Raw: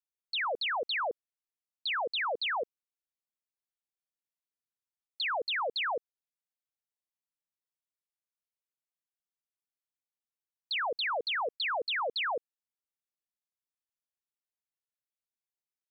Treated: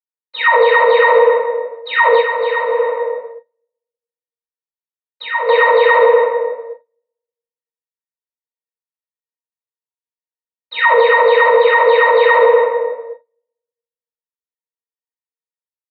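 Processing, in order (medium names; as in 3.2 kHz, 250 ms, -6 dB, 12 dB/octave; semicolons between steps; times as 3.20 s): dead-time distortion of 0.063 ms; transient shaper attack -1 dB, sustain +12 dB; speakerphone echo 270 ms, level -14 dB; simulated room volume 660 m³, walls mixed, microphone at 7.9 m; dynamic bell 720 Hz, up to -5 dB, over -34 dBFS, Q 1.7; gain riding within 5 dB 0.5 s; gate -47 dBFS, range -29 dB; Chebyshev band-pass 430–3300 Hz, order 3; 2.20–5.49 s: compression 6:1, threshold -27 dBFS, peak gain reduction 10 dB; pitch-class resonator A#, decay 0.14 s; loudness maximiser +28.5 dB; trim -1 dB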